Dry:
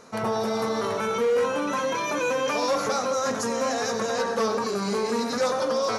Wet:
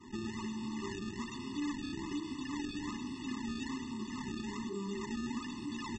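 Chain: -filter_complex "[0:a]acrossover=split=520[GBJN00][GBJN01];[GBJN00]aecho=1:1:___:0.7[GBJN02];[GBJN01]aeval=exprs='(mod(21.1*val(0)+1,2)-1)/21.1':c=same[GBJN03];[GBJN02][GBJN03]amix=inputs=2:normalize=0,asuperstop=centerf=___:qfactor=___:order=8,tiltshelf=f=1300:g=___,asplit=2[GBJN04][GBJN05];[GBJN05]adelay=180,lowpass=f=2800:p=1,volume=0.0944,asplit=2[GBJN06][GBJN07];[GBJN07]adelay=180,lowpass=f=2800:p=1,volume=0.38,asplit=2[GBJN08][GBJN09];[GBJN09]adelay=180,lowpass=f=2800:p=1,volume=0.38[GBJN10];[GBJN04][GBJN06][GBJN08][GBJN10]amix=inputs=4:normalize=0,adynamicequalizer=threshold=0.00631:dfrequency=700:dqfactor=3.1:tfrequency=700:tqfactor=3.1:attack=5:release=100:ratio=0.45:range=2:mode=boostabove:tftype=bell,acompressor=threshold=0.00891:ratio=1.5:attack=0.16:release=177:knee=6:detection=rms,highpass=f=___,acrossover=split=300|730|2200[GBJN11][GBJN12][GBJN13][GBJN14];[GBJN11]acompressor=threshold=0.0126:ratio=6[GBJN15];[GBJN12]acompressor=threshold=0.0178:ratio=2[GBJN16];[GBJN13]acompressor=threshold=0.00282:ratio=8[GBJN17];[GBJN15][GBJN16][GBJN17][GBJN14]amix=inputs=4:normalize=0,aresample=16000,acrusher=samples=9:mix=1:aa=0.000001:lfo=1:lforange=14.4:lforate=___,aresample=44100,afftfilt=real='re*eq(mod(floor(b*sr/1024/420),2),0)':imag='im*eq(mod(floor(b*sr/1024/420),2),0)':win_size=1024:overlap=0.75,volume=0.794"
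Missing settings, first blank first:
3.3, 1600, 2.2, 5.5, 77, 1.2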